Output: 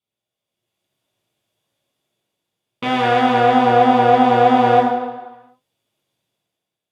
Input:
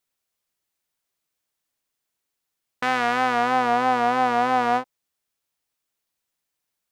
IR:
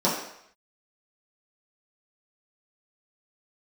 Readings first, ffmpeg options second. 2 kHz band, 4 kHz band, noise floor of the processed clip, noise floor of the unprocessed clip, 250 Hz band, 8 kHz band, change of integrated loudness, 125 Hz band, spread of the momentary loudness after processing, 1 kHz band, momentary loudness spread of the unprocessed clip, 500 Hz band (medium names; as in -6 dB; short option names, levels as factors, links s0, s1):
+2.0 dB, +6.5 dB, under -85 dBFS, -82 dBFS, +10.5 dB, no reading, +7.0 dB, +15.5 dB, 11 LU, +7.0 dB, 5 LU, +11.0 dB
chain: -filter_complex "[0:a]dynaudnorm=f=120:g=11:m=3.55[s0];[1:a]atrim=start_sample=2205,asetrate=27342,aresample=44100[s1];[s0][s1]afir=irnorm=-1:irlink=0,volume=0.133"